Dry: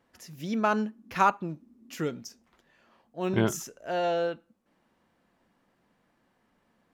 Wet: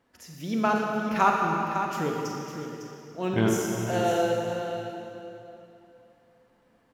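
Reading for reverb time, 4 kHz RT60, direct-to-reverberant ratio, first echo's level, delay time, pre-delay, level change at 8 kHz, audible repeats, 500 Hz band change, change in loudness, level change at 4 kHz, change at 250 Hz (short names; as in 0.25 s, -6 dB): 2.9 s, 2.5 s, -1.0 dB, -9.0 dB, 0.554 s, 33 ms, +3.0 dB, 1, +3.5 dB, +2.0 dB, +3.5 dB, +4.0 dB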